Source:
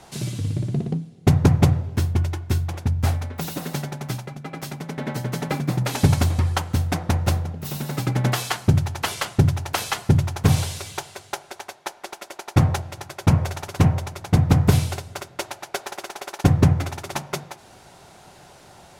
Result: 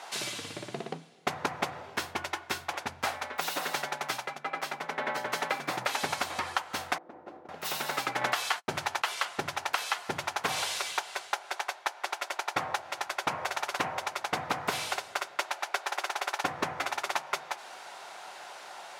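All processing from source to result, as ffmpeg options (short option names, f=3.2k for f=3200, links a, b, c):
-filter_complex "[0:a]asettb=1/sr,asplit=3[a][b][c];[a]atrim=end=4.384[d];[b]atrim=start=4.38:end=5.3,asetpts=PTS-STARTPTS,afade=t=in:d=0.004:c=qsin,afade=t=out:st=0.916:d=0.004:c=qsin,equalizer=f=14k:t=o:w=2.6:g=-6.5,bandreject=f=60:t=h:w=6,bandreject=f=120:t=h:w=6,bandreject=f=180:t=h:w=6,bandreject=f=240:t=h:w=6,bandreject=f=300:t=h:w=6,bandreject=f=360:t=h:w=6,bandreject=f=420:t=h:w=6,bandreject=f=480:t=h:w=6[e];[c]atrim=start=5.296[f];[d][e]acrossfade=d=0.004:c1=hsin:c2=qsin[g];[g][f]acrossfade=d=0.004:c1=qsin:c2=hsin,asettb=1/sr,asplit=3[h][i][j];[h]atrim=end=6.984[k];[i]atrim=start=6.98:end=7.49,asetpts=PTS-STARTPTS,afade=t=in:d=0.004:c=qsin,afade=t=out:st=0.506:d=0.004:c=qsin,bandpass=f=310:t=q:w=2.7,acompressor=threshold=-33dB:ratio=6:attack=3.2:release=140:knee=1:detection=peak[l];[j]atrim=start=7.486[m];[k][l]acrossfade=d=0.004:c1=hsin:c2=qsin[n];[n][m]acrossfade=d=0.004:c1=qsin:c2=hsin,asettb=1/sr,asplit=3[o][p][q];[o]atrim=end=8.214[r];[p]atrim=start=8.21:end=9.04,asetpts=PTS-STARTPTS,afade=t=in:d=0.004:c=qsin,afade=t=out:st=0.826:d=0.004:c=qsin,agate=range=-43dB:threshold=-35dB:ratio=16:release=100:detection=peak,acontrast=23[s];[q]atrim=start=9.036[t];[r][s]acrossfade=d=0.004:c1=hsin:c2=qsin[u];[u][t]acrossfade=d=0.004:c1=qsin:c2=hsin,highpass=860,highshelf=f=5.2k:g=-11.5,acompressor=threshold=-35dB:ratio=6,volume=8dB"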